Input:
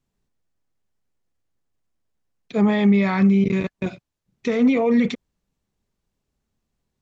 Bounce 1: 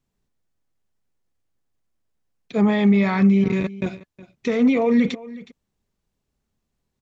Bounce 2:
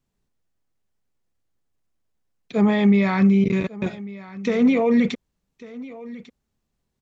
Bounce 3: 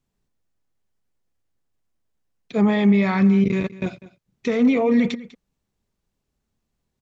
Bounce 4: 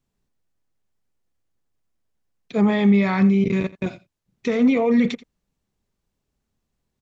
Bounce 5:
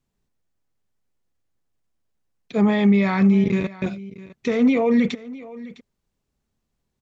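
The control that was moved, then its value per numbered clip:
delay, time: 366 ms, 1147 ms, 198 ms, 84 ms, 657 ms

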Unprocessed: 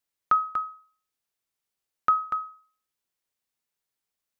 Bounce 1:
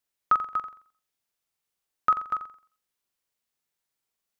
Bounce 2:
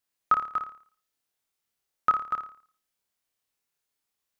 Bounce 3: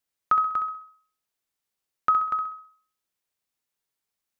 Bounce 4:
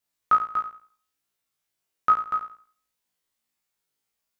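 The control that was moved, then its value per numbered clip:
flutter echo, walls apart: 7.5 m, 4.8 m, 11.2 m, 3 m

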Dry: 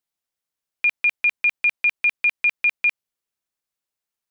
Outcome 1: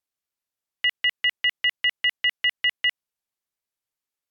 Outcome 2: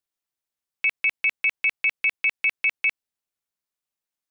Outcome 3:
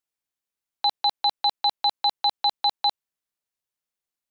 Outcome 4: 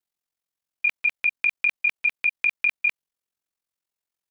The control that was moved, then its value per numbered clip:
ring modulator, frequency: 450 Hz, 180 Hz, 1.6 kHz, 22 Hz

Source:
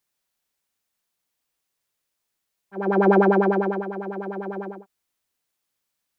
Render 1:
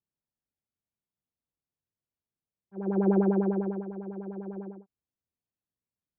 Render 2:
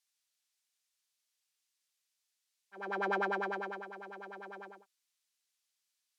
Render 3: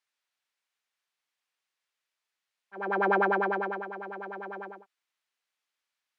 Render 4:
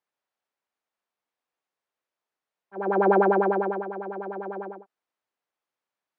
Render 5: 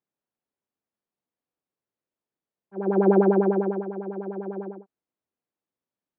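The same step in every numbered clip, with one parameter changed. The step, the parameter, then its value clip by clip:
band-pass filter, frequency: 100 Hz, 5.3 kHz, 2 kHz, 770 Hz, 280 Hz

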